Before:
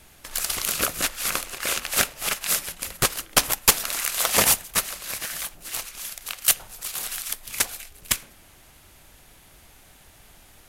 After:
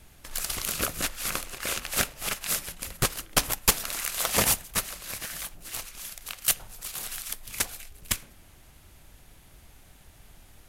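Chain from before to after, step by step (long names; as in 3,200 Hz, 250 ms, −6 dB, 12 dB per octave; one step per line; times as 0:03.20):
low-shelf EQ 230 Hz +8 dB
level −5 dB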